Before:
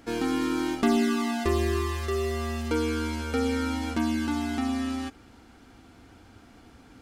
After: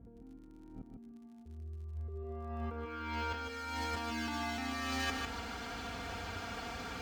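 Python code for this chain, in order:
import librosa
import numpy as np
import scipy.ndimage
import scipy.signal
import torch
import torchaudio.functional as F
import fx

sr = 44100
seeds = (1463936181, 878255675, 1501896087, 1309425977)

y = scipy.signal.sosfilt(scipy.signal.butter(2, 72.0, 'highpass', fs=sr, output='sos'), x)
y = fx.peak_eq(y, sr, hz=260.0, db=-13.0, octaves=1.1)
y = y + 0.59 * np.pad(y, (int(4.3 * sr / 1000.0), 0))[:len(y)]
y = fx.over_compress(y, sr, threshold_db=-42.0, ratio=-1.0)
y = fx.filter_sweep_lowpass(y, sr, from_hz=160.0, to_hz=8000.0, start_s=1.84, end_s=3.55, q=0.77)
y = fx.dmg_crackle(y, sr, seeds[0], per_s=44.0, level_db=-57.0)
y = fx.echo_feedback(y, sr, ms=151, feedback_pct=22, wet_db=-5.0)
y = np.interp(np.arange(len(y)), np.arange(len(y))[::2], y[::2])
y = y * librosa.db_to_amplitude(2.5)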